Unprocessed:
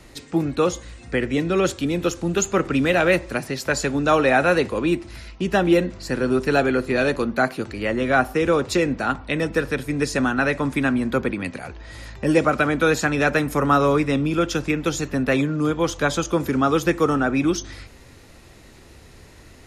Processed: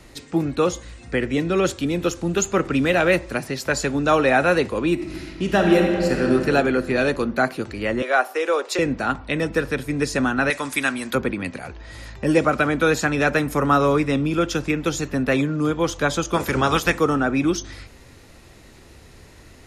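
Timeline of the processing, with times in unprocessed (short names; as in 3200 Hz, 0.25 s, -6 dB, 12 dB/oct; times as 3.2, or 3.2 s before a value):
4.93–6.31 reverb throw, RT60 2.6 s, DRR 1 dB
8.02–8.79 HPF 420 Hz 24 dB/oct
10.5–11.15 tilt +4 dB/oct
16.33–16.98 spectral limiter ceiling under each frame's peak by 16 dB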